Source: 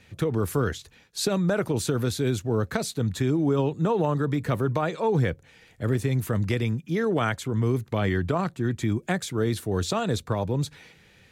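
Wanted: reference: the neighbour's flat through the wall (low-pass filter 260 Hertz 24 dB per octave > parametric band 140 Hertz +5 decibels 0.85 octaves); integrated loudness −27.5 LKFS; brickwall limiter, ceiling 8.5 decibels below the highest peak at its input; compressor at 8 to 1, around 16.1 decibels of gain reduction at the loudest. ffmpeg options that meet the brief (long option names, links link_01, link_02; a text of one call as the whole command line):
ffmpeg -i in.wav -af "acompressor=threshold=-37dB:ratio=8,alimiter=level_in=10.5dB:limit=-24dB:level=0:latency=1,volume=-10.5dB,lowpass=frequency=260:width=0.5412,lowpass=frequency=260:width=1.3066,equalizer=frequency=140:width_type=o:width=0.85:gain=5,volume=16dB" out.wav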